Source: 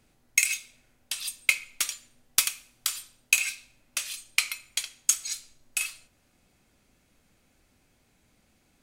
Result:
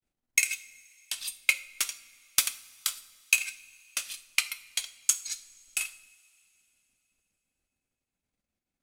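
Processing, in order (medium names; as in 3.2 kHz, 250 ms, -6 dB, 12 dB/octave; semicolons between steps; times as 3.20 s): expander -53 dBFS; transient shaper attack +1 dB, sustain -11 dB; two-slope reverb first 0.43 s, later 3.3 s, from -20 dB, DRR 10 dB; trim -2.5 dB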